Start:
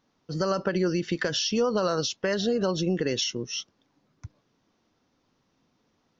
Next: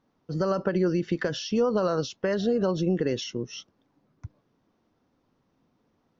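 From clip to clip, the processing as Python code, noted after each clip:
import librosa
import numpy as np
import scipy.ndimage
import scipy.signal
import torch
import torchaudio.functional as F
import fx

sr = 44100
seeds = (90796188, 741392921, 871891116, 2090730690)

y = fx.high_shelf(x, sr, hz=2100.0, db=-11.5)
y = y * 10.0 ** (1.5 / 20.0)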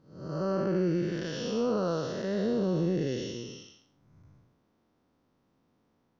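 y = fx.spec_blur(x, sr, span_ms=305.0)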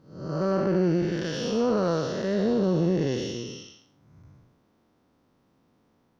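y = fx.diode_clip(x, sr, knee_db=-24.0)
y = y * 10.0 ** (5.5 / 20.0)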